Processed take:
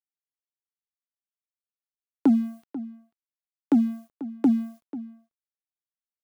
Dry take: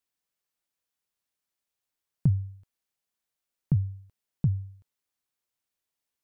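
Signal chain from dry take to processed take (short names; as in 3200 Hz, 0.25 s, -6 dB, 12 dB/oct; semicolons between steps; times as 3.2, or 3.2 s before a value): tilt +2.5 dB/oct; frequency shift +130 Hz; in parallel at -1 dB: limiter -27.5 dBFS, peak gain reduction 7.5 dB; on the sum: sample leveller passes 1; spectral noise reduction 6 dB; crossover distortion -56 dBFS; outdoor echo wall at 84 m, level -15 dB; gain +6 dB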